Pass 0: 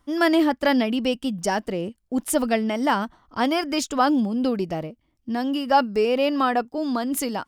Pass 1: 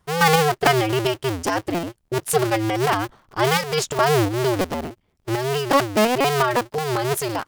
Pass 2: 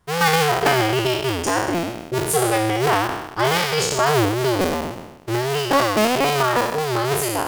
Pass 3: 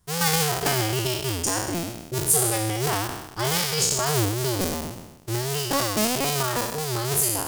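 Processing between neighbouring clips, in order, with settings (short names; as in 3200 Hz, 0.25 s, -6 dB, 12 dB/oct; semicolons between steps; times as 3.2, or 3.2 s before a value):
cycle switcher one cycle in 2, inverted; tremolo saw up 2.8 Hz, depth 40%; gain +4 dB
spectral trails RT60 1.02 s; in parallel at +2 dB: limiter -9.5 dBFS, peak gain reduction 10 dB; on the sum: gain -7.5 dB
tone controls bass +8 dB, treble +14 dB; gain -9 dB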